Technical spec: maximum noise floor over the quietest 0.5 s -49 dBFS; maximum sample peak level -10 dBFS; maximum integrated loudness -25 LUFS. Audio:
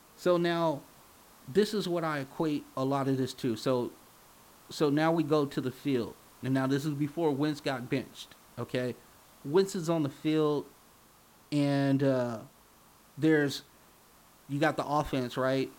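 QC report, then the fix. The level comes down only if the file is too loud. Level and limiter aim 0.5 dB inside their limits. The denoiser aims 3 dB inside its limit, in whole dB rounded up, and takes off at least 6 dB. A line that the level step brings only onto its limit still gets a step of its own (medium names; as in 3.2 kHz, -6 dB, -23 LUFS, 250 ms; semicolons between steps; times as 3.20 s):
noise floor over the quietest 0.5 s -60 dBFS: pass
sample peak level -14.0 dBFS: pass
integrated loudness -30.5 LUFS: pass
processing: none needed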